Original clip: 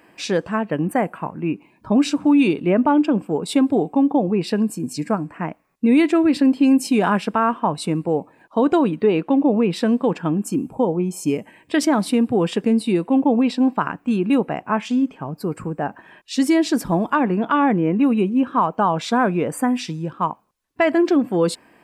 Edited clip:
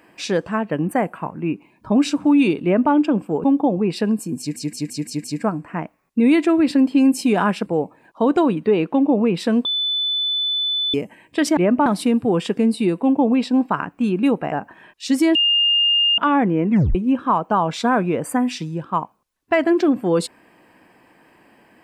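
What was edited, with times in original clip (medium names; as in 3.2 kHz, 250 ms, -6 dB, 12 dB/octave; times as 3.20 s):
2.64–2.93 s: copy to 11.93 s
3.44–3.95 s: delete
4.90 s: stutter 0.17 s, 6 plays
7.32–8.02 s: delete
10.01–11.30 s: bleep 3.5 kHz -18.5 dBFS
14.59–15.80 s: delete
16.63–17.46 s: bleep 2.82 kHz -13.5 dBFS
17.98 s: tape stop 0.25 s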